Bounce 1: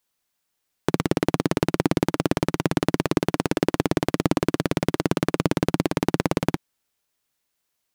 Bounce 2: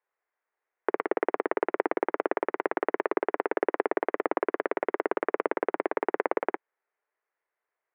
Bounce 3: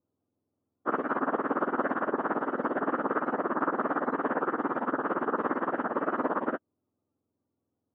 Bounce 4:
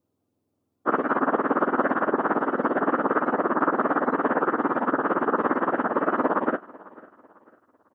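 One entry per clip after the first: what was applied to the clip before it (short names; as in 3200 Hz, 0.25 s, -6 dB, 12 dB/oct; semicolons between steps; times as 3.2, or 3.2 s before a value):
elliptic band-pass 400–2000 Hz, stop band 70 dB
spectrum mirrored in octaves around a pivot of 720 Hz; gain +3.5 dB
feedback echo 0.498 s, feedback 37%, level -22 dB; gain +6 dB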